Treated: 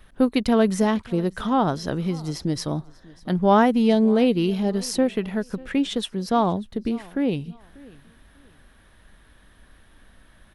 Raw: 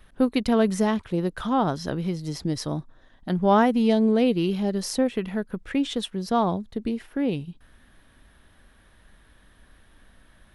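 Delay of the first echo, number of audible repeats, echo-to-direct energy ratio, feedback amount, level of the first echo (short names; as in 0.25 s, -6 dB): 0.592 s, 2, -22.5 dB, 28%, -23.0 dB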